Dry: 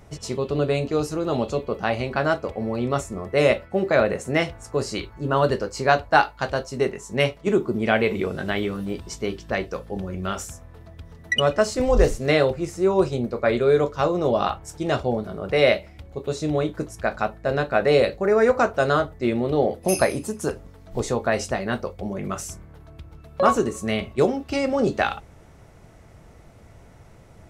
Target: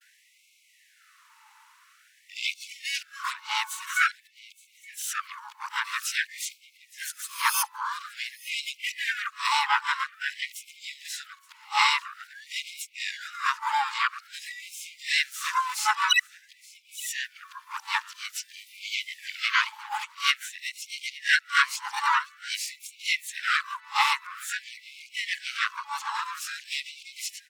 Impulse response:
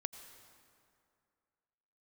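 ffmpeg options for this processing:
-filter_complex "[0:a]areverse,equalizer=f=200:t=o:w=0.76:g=7,asplit=4[a][b][c][d];[b]asetrate=22050,aresample=44100,atempo=2,volume=-8dB[e];[c]asetrate=58866,aresample=44100,atempo=0.749154,volume=-4dB[f];[d]asetrate=88200,aresample=44100,atempo=0.5,volume=-9dB[g];[a][e][f][g]amix=inputs=4:normalize=0,asplit=2[h][i];[i]aecho=0:1:871:0.0944[j];[h][j]amix=inputs=2:normalize=0,afftfilt=real='re*gte(b*sr/1024,810*pow(2100/810,0.5+0.5*sin(2*PI*0.49*pts/sr)))':imag='im*gte(b*sr/1024,810*pow(2100/810,0.5+0.5*sin(2*PI*0.49*pts/sr)))':win_size=1024:overlap=0.75"

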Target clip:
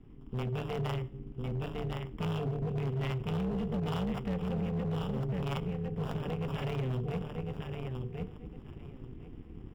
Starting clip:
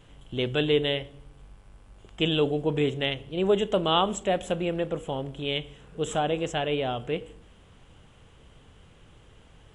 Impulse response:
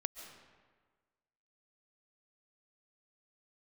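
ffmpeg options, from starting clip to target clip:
-filter_complex "[0:a]asuperstop=centerf=930:order=8:qfactor=0.67,asplit=2[a][b];[b]aecho=0:1:1054|2108|3162:0.447|0.0804|0.0145[c];[a][c]amix=inputs=2:normalize=0,dynaudnorm=f=190:g=11:m=5.5dB,acrossover=split=330|2800[d][e][f];[f]acrusher=samples=21:mix=1:aa=0.000001[g];[d][e][g]amix=inputs=3:normalize=0,equalizer=f=230:t=o:w=0.37:g=-3,bandreject=f=50:t=h:w=6,bandreject=f=100:t=h:w=6,bandreject=f=150:t=h:w=6,acontrast=51,firequalizer=gain_entry='entry(230,0);entry(330,-29);entry(510,-8);entry(3500,-16);entry(7900,-20)':delay=0.05:min_phase=1,tremolo=f=260:d=0.889,alimiter=limit=-22dB:level=0:latency=1:release=90,volume=27.5dB,asoftclip=hard,volume=-27.5dB"

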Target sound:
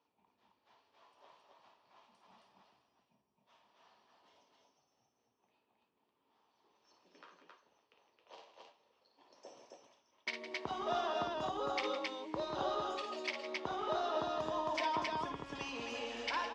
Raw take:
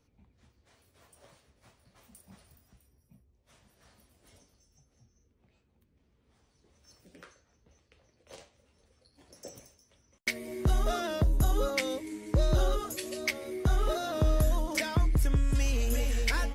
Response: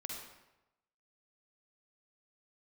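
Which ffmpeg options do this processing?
-filter_complex "[0:a]highpass=480,equalizer=f=520:t=q:w=4:g=-6,equalizer=f=950:t=q:w=4:g=8,equalizer=f=1.5k:t=q:w=4:g=-6,equalizer=f=2.1k:t=q:w=4:g=-8,equalizer=f=4k:t=q:w=4:g=-4,lowpass=f=4.3k:w=0.5412,lowpass=f=4.3k:w=1.3066,asplit=2[a][b];[b]aecho=0:1:55.39|160.3|268.2:0.447|0.251|0.794[c];[a][c]amix=inputs=2:normalize=0,volume=-2.5dB"

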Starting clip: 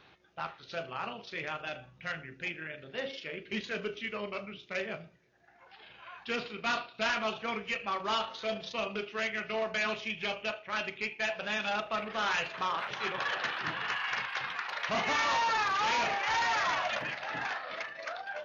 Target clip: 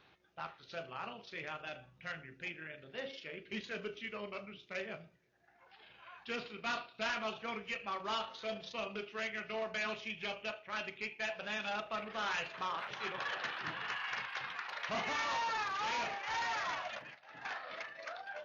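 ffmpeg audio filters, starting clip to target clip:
-filter_complex "[0:a]asplit=3[a][b][c];[a]afade=t=out:st=15.08:d=0.02[d];[b]agate=range=-33dB:threshold=-28dB:ratio=3:detection=peak,afade=t=in:st=15.08:d=0.02,afade=t=out:st=17.44:d=0.02[e];[c]afade=t=in:st=17.44:d=0.02[f];[d][e][f]amix=inputs=3:normalize=0,volume=-6dB"

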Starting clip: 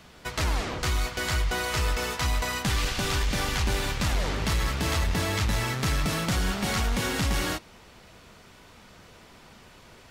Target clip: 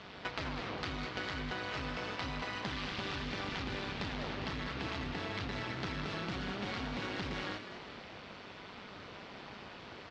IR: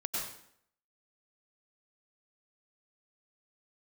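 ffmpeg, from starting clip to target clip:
-filter_complex "[0:a]lowpass=f=4.5k:w=0.5412,lowpass=f=4.5k:w=1.3066,tremolo=f=200:d=0.824,highpass=f=150:p=1,acompressor=threshold=-43dB:ratio=8,asplit=2[a][b];[b]asplit=5[c][d][e][f][g];[c]adelay=202,afreqshift=55,volume=-9dB[h];[d]adelay=404,afreqshift=110,volume=-15.4dB[i];[e]adelay=606,afreqshift=165,volume=-21.8dB[j];[f]adelay=808,afreqshift=220,volume=-28.1dB[k];[g]adelay=1010,afreqshift=275,volume=-34.5dB[l];[h][i][j][k][l]amix=inputs=5:normalize=0[m];[a][m]amix=inputs=2:normalize=0,volume=6.5dB"

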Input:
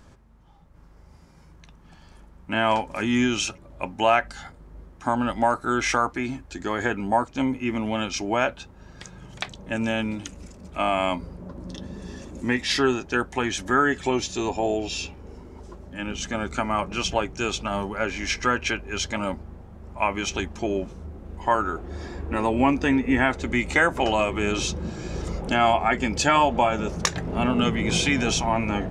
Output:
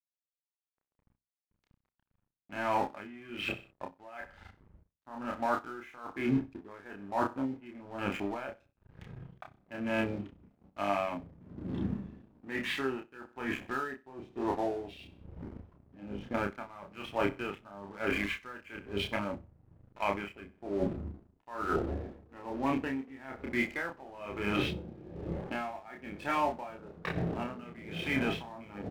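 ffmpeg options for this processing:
-filter_complex "[0:a]afwtdn=0.0282,lowpass=f=2.9k:w=0.5412,lowpass=f=2.9k:w=1.3066,lowshelf=f=93:g=-10,areverse,acompressor=threshold=-35dB:ratio=16,areverse,aeval=exprs='sgn(val(0))*max(abs(val(0))-0.002,0)':c=same,asplit=2[a][b];[b]adelay=30,volume=-3dB[c];[a][c]amix=inputs=2:normalize=0,asplit=2[d][e];[e]aecho=0:1:63|126|189:0.141|0.048|0.0163[f];[d][f]amix=inputs=2:normalize=0,aeval=exprs='val(0)*pow(10,-19*(0.5-0.5*cos(2*PI*1.1*n/s))/20)':c=same,volume=9dB"

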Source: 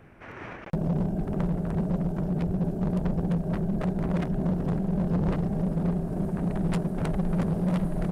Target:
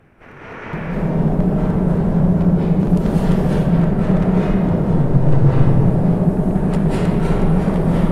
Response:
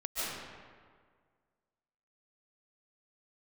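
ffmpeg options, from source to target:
-filter_complex "[0:a]asettb=1/sr,asplit=3[a][b][c];[a]atrim=end=2.794[d];[b]atrim=start=2.79:end=3.43,asetpts=PTS-STARTPTS,afade=t=in:d=0.004:c=qsin,afade=t=out:st=0.636:d=0.004:c=qsin,highshelf=f=2k:g=10.5[e];[c]atrim=start=3.426[f];[d][e]acrossfade=d=0.004:c1=hsin:c2=qsin[g];[g][f]acrossfade=d=0.004:c1=qsin:c2=hsin,asettb=1/sr,asplit=3[h][i][j];[h]atrim=end=4.634[k];[i]atrim=start=4.63:end=5.48,asetpts=PTS-STARTPTS,afade=t=in:d=0.004:c=qsin,afade=t=out:st=0.846:d=0.004:c=qsin,afreqshift=-40[l];[j]atrim=start=5.476[m];[k][l]acrossfade=d=0.004:c1=hsin:c2=qsin[n];[n][m]acrossfade=d=0.004:c1=qsin:c2=hsin[o];[1:a]atrim=start_sample=2205,asetrate=31311,aresample=44100[p];[o][p]afir=irnorm=-1:irlink=0,volume=3dB"

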